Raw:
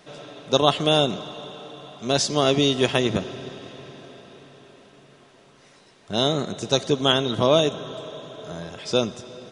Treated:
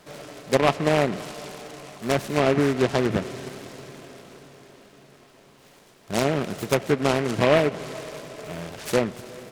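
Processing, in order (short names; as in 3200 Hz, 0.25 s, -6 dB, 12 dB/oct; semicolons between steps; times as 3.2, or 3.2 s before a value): treble ducked by the level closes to 1400 Hz, closed at -16 dBFS; noise-modulated delay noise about 1400 Hz, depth 0.1 ms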